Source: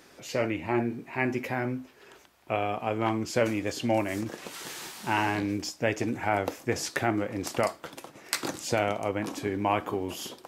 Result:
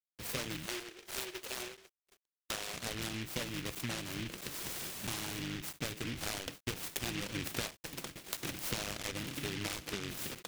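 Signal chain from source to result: octaver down 1 oct, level -2 dB; compressor 16:1, threshold -36 dBFS, peak gain reduction 17.5 dB; gate -48 dBFS, range -25 dB; bit-crush 11-bit; vocal rider 2 s; 0.66–2.74 brick-wall FIR band-pass 330–2600 Hz; crackling interface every 0.66 s, samples 256, zero, from 0.45; noise-modulated delay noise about 2400 Hz, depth 0.35 ms; gain +1 dB

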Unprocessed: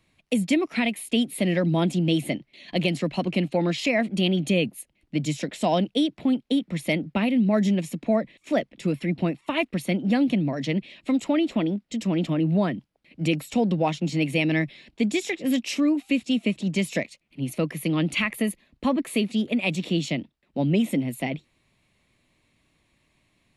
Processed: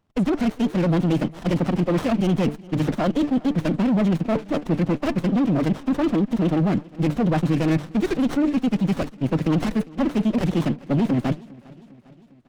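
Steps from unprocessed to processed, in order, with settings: HPF 46 Hz 6 dB/oct; de-hum 147.3 Hz, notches 3; sample leveller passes 3; reverse; compressor 12:1, threshold -23 dBFS, peak gain reduction 10 dB; reverse; time stretch by phase-locked vocoder 0.53×; air absorption 99 m; feedback echo 0.402 s, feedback 58%, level -22.5 dB; running maximum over 17 samples; gain +6 dB

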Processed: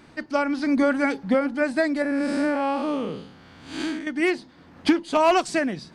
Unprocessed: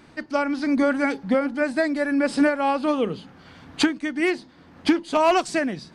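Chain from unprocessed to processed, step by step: 2.02–4.07 time blur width 0.181 s

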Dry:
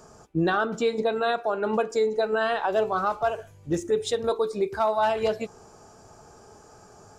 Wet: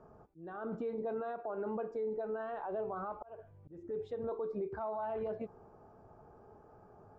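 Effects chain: limiter -23.5 dBFS, peak gain reduction 9 dB; LPF 1100 Hz 12 dB/oct; auto swell 0.331 s; gain -6.5 dB

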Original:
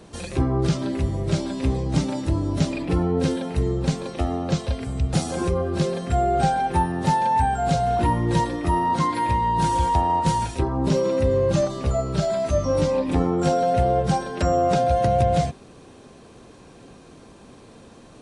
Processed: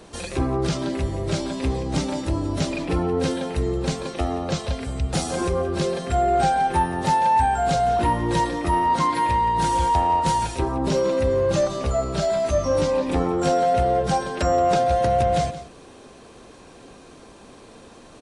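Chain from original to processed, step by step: bell 130 Hz -7 dB 2.1 oct; echo 0.174 s -15.5 dB; in parallel at -7 dB: soft clip -22 dBFS, distortion -12 dB

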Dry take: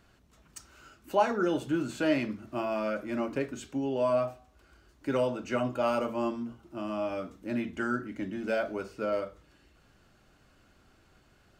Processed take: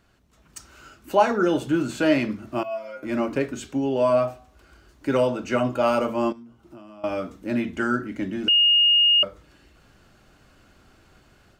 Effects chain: AGC gain up to 7 dB; 2.63–3.03 metallic resonator 130 Hz, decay 0.42 s, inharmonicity 0.002; 6.32–7.04 compressor 12:1, threshold -42 dBFS, peak gain reduction 20.5 dB; 8.48–9.23 bleep 2850 Hz -14 dBFS

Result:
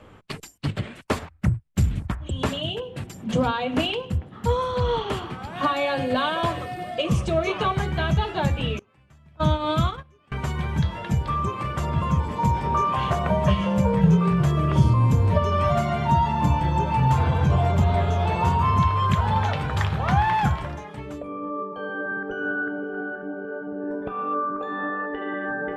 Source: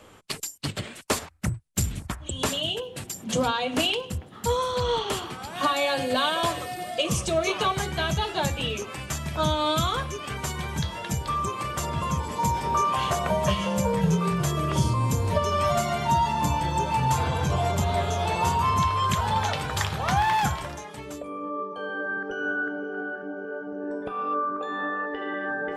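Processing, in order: 8.79–10.32 gate -24 dBFS, range -26 dB; tone controls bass +6 dB, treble -14 dB; gain +1 dB

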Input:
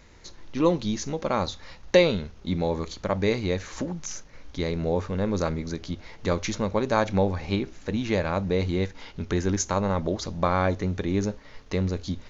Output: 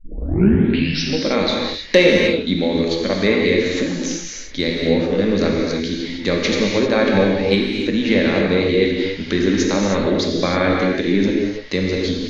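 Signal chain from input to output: tape start at the beginning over 1.17 s; graphic EQ 125/250/500/1000/2000/4000 Hz -8/+10/+4/-7/+9/+11 dB; treble ducked by the level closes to 2700 Hz, closed at -13.5 dBFS; soft clip -1.5 dBFS, distortion -27 dB; non-linear reverb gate 0.34 s flat, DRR -1.5 dB; gain +1 dB

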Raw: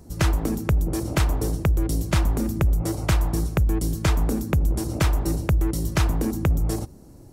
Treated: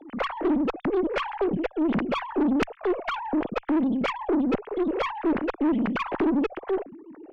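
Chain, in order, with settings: sine-wave speech; tube stage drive 19 dB, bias 0.4

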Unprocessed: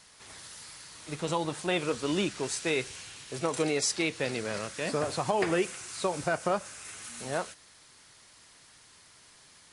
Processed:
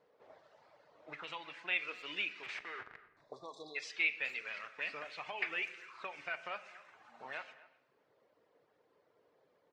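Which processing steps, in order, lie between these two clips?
reverb removal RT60 0.78 s; 2.65–3.76 spectral delete 1200–3400 Hz; 2.43–3.17 Schmitt trigger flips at -38.5 dBFS; auto-wah 440–2400 Hz, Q 3.8, up, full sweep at -31.5 dBFS; air absorption 130 m; speakerphone echo 0.25 s, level -19 dB; reverb RT60 1.1 s, pre-delay 7 ms, DRR 10.5 dB; gain +5 dB

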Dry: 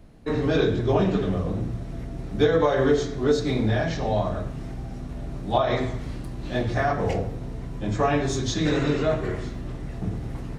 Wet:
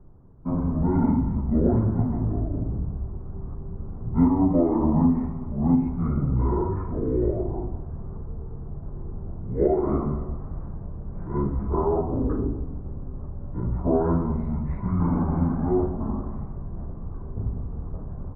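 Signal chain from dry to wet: inverse Chebyshev low-pass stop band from 5100 Hz, stop band 50 dB; speed mistake 78 rpm record played at 45 rpm

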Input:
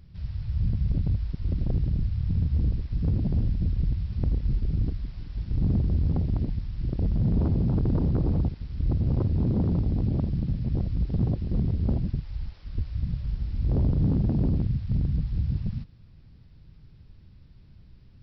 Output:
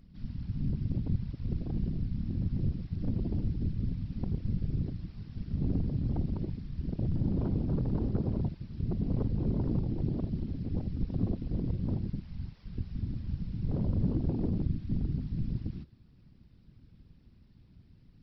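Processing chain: whisperiser; gain -6 dB

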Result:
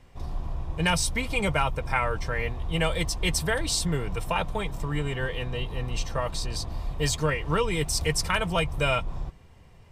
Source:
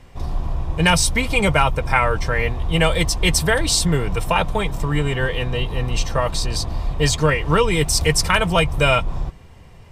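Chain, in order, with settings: 6.71–7.25 high shelf 11000 Hz +8.5 dB; gain -8.5 dB

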